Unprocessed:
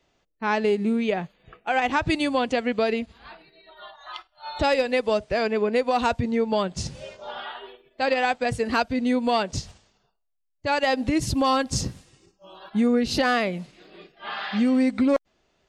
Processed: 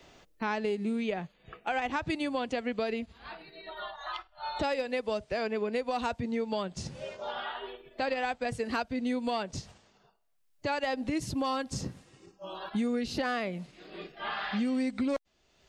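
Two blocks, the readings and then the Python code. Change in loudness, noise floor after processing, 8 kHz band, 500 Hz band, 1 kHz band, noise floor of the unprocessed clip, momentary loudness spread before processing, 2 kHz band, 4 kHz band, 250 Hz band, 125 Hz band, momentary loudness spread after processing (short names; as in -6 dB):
-9.0 dB, -68 dBFS, -10.0 dB, -8.5 dB, -8.5 dB, -72 dBFS, 15 LU, -8.0 dB, -8.5 dB, -8.5 dB, -8.5 dB, 12 LU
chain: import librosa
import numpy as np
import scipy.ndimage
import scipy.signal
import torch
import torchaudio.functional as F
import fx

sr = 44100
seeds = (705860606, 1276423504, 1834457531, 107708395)

y = fx.band_squash(x, sr, depth_pct=70)
y = y * librosa.db_to_amplitude(-9.0)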